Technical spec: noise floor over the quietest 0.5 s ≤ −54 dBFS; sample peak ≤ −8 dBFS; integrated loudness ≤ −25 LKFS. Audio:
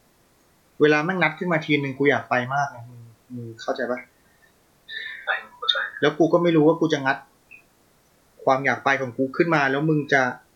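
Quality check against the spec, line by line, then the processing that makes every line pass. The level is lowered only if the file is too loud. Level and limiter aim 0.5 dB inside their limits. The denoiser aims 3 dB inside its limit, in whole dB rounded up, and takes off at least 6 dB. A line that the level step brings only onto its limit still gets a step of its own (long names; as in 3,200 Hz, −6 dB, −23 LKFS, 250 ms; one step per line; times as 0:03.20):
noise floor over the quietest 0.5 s −60 dBFS: in spec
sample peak −5.5 dBFS: out of spec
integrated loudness −22.0 LKFS: out of spec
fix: level −3.5 dB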